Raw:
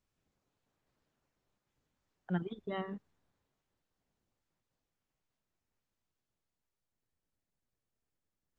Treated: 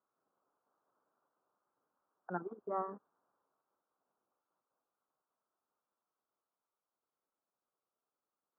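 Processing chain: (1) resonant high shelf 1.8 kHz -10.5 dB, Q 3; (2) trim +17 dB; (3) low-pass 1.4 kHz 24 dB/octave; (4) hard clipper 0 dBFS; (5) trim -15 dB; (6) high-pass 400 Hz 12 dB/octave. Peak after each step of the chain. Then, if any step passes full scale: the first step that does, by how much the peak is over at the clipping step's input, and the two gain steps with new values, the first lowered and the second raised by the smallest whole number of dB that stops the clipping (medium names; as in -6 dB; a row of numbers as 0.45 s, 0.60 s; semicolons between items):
-20.5 dBFS, -3.5 dBFS, -4.0 dBFS, -4.0 dBFS, -19.0 dBFS, -23.0 dBFS; nothing clips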